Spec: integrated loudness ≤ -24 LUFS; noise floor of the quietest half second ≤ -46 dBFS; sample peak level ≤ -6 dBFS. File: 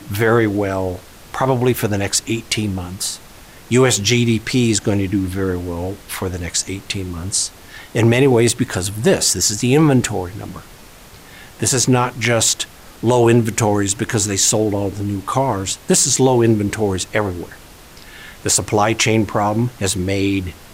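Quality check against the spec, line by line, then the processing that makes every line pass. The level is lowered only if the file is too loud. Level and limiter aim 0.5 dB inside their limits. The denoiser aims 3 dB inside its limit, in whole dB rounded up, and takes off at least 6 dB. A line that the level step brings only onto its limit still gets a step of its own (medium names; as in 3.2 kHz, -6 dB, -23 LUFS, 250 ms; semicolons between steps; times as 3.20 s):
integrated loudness -17.0 LUFS: fail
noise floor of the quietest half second -41 dBFS: fail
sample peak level -4.0 dBFS: fail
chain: trim -7.5 dB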